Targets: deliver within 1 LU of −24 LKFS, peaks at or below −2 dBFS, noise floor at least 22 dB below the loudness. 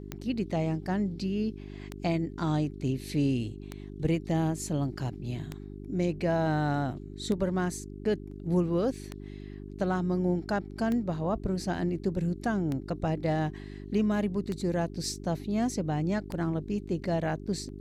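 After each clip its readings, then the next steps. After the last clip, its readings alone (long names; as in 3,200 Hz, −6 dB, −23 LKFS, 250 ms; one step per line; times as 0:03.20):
number of clicks 10; mains hum 50 Hz; hum harmonics up to 400 Hz; level of the hum −40 dBFS; integrated loudness −30.5 LKFS; sample peak −15.0 dBFS; target loudness −24.0 LKFS
→ click removal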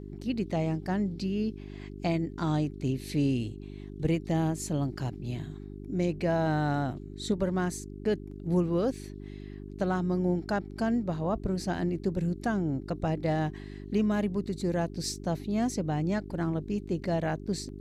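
number of clicks 0; mains hum 50 Hz; hum harmonics up to 400 Hz; level of the hum −40 dBFS
→ hum removal 50 Hz, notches 8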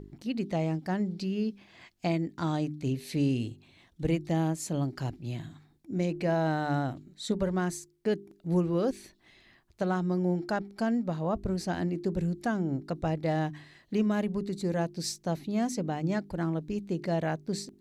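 mains hum none found; integrated loudness −31.5 LKFS; sample peak −16.5 dBFS; target loudness −24.0 LKFS
→ level +7.5 dB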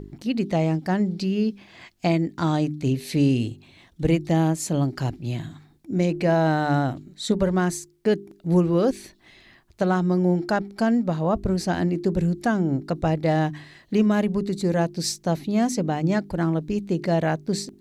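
integrated loudness −24.0 LKFS; sample peak −9.0 dBFS; background noise floor −56 dBFS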